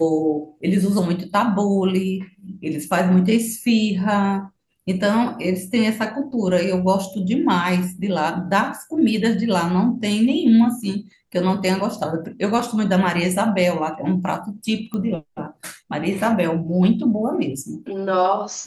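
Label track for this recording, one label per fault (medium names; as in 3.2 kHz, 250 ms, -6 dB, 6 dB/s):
14.940000	14.940000	pop -17 dBFS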